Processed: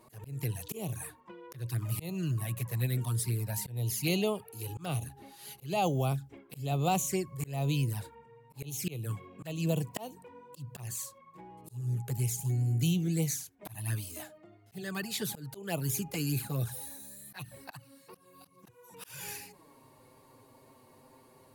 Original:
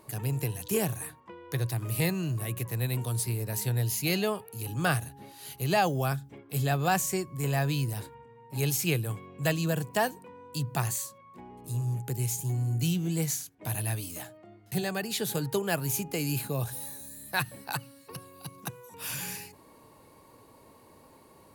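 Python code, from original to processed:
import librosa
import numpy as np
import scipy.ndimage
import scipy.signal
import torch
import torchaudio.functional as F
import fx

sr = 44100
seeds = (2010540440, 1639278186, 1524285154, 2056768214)

y = fx.env_flanger(x, sr, rest_ms=8.9, full_db=-24.5)
y = fx.auto_swell(y, sr, attack_ms=249.0)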